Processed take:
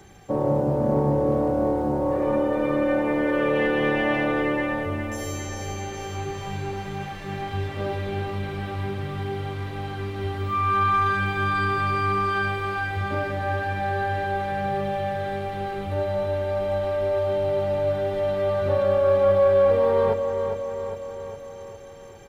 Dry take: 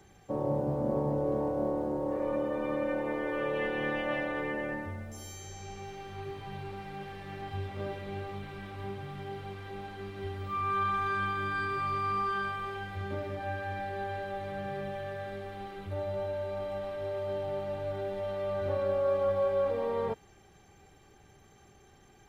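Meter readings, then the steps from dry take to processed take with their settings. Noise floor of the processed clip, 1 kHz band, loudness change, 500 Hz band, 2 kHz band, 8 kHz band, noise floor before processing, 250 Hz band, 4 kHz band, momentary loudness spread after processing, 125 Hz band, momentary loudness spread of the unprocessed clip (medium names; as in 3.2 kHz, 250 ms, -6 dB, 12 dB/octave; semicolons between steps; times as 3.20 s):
-38 dBFS, +9.0 dB, +9.5 dB, +10.0 dB, +9.5 dB, no reading, -59 dBFS, +10.0 dB, +9.5 dB, 11 LU, +11.0 dB, 12 LU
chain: feedback delay 407 ms, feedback 58%, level -8 dB; in parallel at -8 dB: saturation -26.5 dBFS, distortion -14 dB; on the sum: trim +6 dB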